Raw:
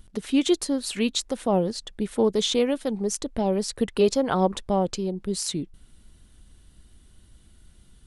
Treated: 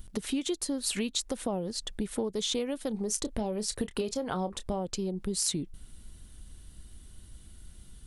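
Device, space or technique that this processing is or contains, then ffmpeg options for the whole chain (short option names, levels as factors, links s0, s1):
ASMR close-microphone chain: -filter_complex "[0:a]lowshelf=f=130:g=4.5,acompressor=threshold=0.0355:ratio=6,highshelf=f=6500:g=8,asettb=1/sr,asplit=3[s0][s1][s2];[s0]atrim=end=2.884[s3];[s1]atrim=start=2.88:end=4.8,asetpts=PTS-STARTPTS,afade=t=in:d=0.004:c=qsin,afade=t=out:st=1.916:d=0.004:c=qsin,asplit=2[s4][s5];[s5]adelay=28,volume=0.224[s6];[s4][s6]amix=inputs=2:normalize=0,atrim=end_sample=84672[s7];[s2]atrim=start=4.796[s8];[s3][s7]acrossfade=d=0.004:c1=hsin:c2=qsin[s9];[s9][s8]acrossfade=d=0.004:c1=qsin:c2=hsin"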